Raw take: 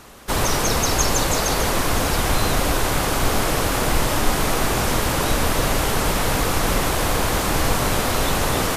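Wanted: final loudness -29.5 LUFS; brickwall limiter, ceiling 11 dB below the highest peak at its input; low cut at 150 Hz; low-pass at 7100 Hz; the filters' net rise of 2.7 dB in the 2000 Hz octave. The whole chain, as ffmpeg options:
-af "highpass=150,lowpass=7.1k,equalizer=f=2k:t=o:g=3.5,volume=-3dB,alimiter=limit=-21.5dB:level=0:latency=1"

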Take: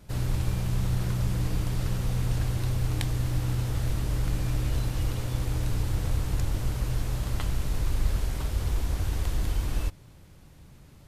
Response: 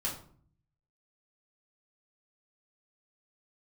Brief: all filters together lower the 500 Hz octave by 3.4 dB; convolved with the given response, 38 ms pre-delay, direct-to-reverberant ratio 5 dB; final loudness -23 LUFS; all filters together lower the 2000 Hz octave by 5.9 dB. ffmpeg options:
-filter_complex "[0:a]equalizer=f=500:t=o:g=-4,equalizer=f=2k:t=o:g=-7.5,asplit=2[a][b];[1:a]atrim=start_sample=2205,adelay=38[c];[b][c]afir=irnorm=-1:irlink=0,volume=-8.5dB[d];[a][d]amix=inputs=2:normalize=0,volume=4.5dB"

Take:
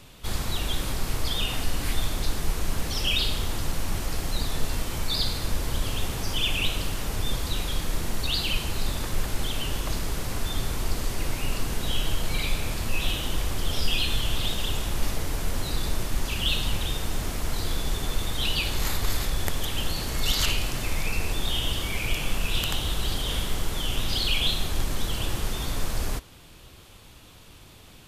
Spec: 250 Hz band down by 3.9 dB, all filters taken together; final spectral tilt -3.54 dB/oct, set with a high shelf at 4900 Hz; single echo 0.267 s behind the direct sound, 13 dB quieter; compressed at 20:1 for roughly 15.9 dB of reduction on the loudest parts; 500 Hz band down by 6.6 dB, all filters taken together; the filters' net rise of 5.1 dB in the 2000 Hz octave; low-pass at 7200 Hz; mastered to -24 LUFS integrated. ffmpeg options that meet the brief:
-af "lowpass=7.2k,equalizer=f=250:t=o:g=-3.5,equalizer=f=500:t=o:g=-8,equalizer=f=2k:t=o:g=6,highshelf=f=4.9k:g=6,acompressor=threshold=-33dB:ratio=20,aecho=1:1:267:0.224,volume=15.5dB"

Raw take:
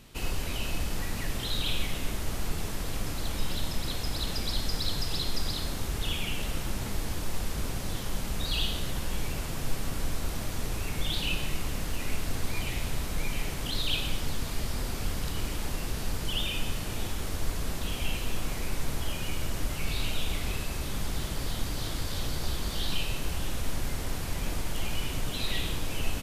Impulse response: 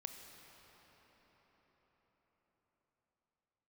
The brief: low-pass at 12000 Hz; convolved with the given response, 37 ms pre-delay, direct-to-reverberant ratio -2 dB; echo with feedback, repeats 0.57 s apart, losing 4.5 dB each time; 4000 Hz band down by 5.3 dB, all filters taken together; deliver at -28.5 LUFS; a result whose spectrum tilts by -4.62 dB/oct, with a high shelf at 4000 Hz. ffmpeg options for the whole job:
-filter_complex "[0:a]lowpass=12k,highshelf=f=4k:g=-5,equalizer=f=4k:t=o:g=-4,aecho=1:1:570|1140|1710|2280|2850|3420|3990|4560|5130:0.596|0.357|0.214|0.129|0.0772|0.0463|0.0278|0.0167|0.01,asplit=2[a][b];[1:a]atrim=start_sample=2205,adelay=37[c];[b][c]afir=irnorm=-1:irlink=0,volume=5.5dB[d];[a][d]amix=inputs=2:normalize=0,volume=1dB"

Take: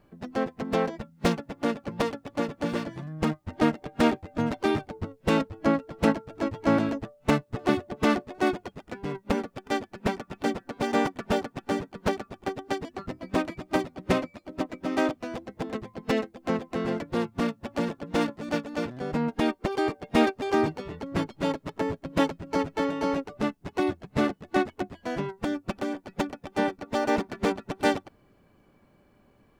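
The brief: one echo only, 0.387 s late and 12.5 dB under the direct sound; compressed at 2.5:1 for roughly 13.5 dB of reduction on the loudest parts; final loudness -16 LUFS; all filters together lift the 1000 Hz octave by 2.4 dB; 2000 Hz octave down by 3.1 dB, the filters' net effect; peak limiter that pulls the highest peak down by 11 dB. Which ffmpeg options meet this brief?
-af "equalizer=f=1k:t=o:g=4.5,equalizer=f=2k:t=o:g=-6,acompressor=threshold=-38dB:ratio=2.5,alimiter=level_in=4.5dB:limit=-24dB:level=0:latency=1,volume=-4.5dB,aecho=1:1:387:0.237,volume=25dB"

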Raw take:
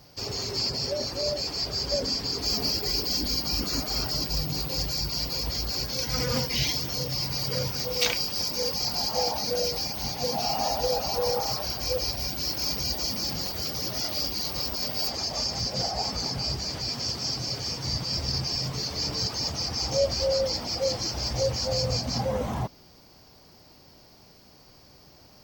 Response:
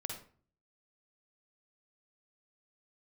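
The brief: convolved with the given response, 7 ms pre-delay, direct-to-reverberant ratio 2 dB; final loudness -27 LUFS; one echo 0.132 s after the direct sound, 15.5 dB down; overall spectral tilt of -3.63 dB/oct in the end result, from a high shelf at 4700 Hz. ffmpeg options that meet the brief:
-filter_complex "[0:a]highshelf=f=4.7k:g=-3.5,aecho=1:1:132:0.168,asplit=2[a][b];[1:a]atrim=start_sample=2205,adelay=7[c];[b][c]afir=irnorm=-1:irlink=0,volume=-1.5dB[d];[a][d]amix=inputs=2:normalize=0,volume=-0.5dB"

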